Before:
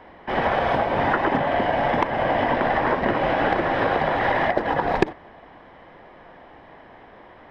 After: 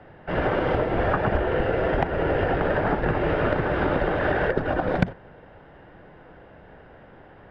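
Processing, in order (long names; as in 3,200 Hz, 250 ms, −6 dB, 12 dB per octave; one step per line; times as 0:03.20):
bass and treble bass +4 dB, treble −6 dB
frequency shifter −200 Hz
level −2 dB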